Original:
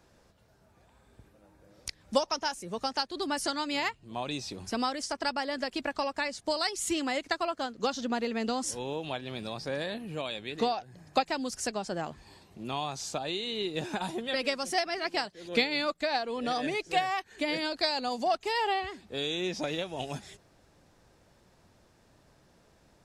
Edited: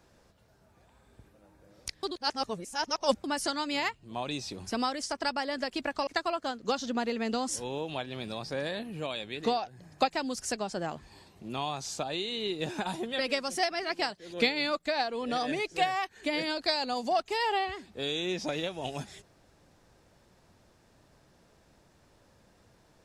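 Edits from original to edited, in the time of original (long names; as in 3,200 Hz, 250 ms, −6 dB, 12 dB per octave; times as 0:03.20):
0:02.03–0:03.24: reverse
0:06.07–0:07.22: remove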